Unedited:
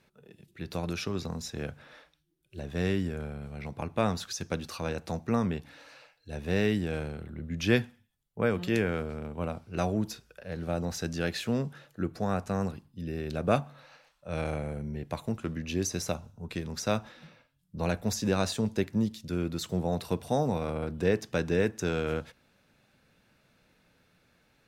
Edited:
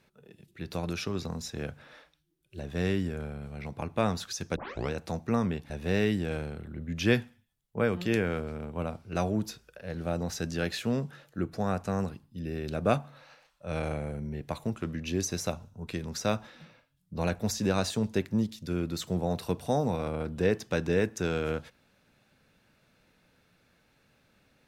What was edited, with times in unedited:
4.56 tape start 0.35 s
5.7–6.32 cut

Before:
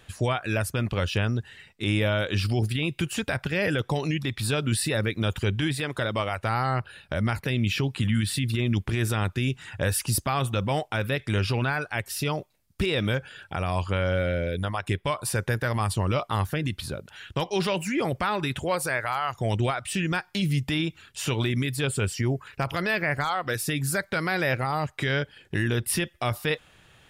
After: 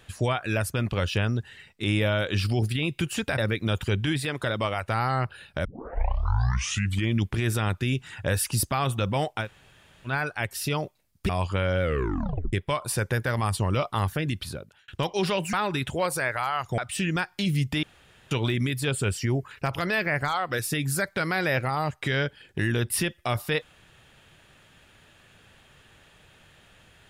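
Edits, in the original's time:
3.38–4.93 cut
7.2 tape start 1.53 s
10.99–11.64 room tone, crossfade 0.10 s
12.84–13.66 cut
14.19 tape stop 0.71 s
16.8–17.25 fade out
17.9–18.22 cut
19.47–19.74 cut
20.79–21.27 room tone

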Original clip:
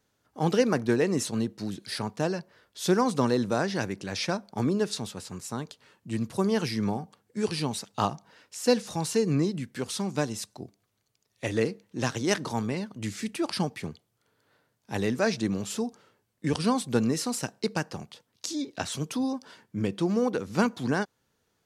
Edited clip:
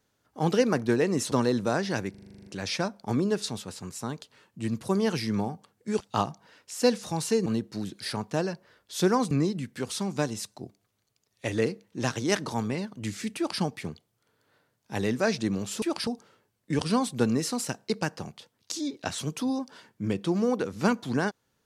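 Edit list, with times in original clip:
1.32–3.17 move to 9.3
3.95 stutter 0.04 s, 10 plays
7.49–7.84 cut
13.35–13.6 copy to 15.81

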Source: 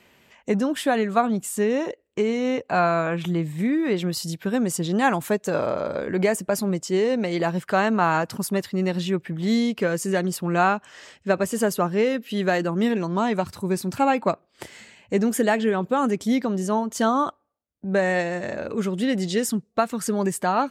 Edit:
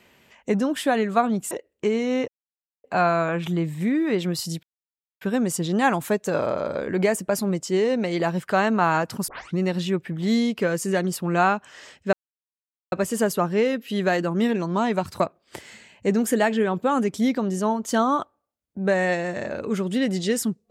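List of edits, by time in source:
1.51–1.85 cut
2.62 insert silence 0.56 s
4.41 insert silence 0.58 s
8.48 tape start 0.30 s
11.33 insert silence 0.79 s
13.61–14.27 cut

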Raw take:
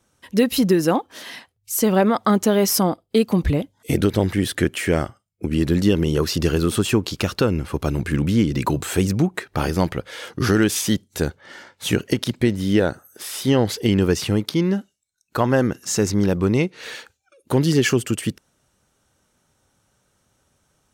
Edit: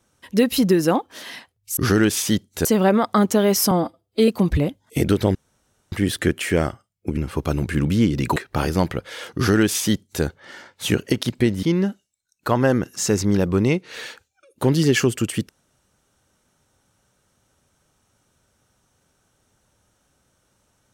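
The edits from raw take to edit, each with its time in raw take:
2.83–3.21 stretch 1.5×
4.28 insert room tone 0.57 s
5.53–7.54 cut
8.73–9.37 cut
10.36–11.24 copy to 1.77
12.64–14.52 cut

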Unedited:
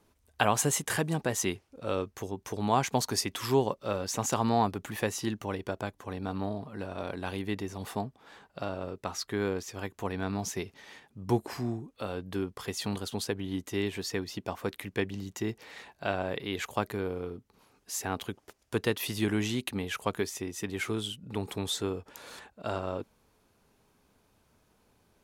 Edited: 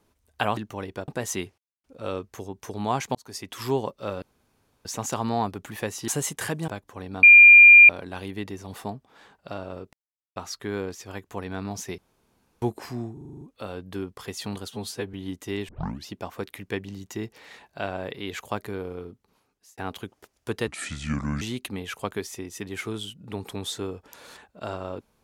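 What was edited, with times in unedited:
0.57–1.17 swap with 5.28–5.79
1.67 insert silence 0.26 s
2.98–3.48 fade in
4.05 insert room tone 0.63 s
6.34–7 bleep 2400 Hz -6.5 dBFS
9.04 insert silence 0.43 s
10.66–11.3 room tone
11.81 stutter 0.04 s, 8 plays
13.1–13.39 stretch 1.5×
13.94 tape start 0.37 s
17.32–18.03 fade out
18.93–19.44 speed 69%

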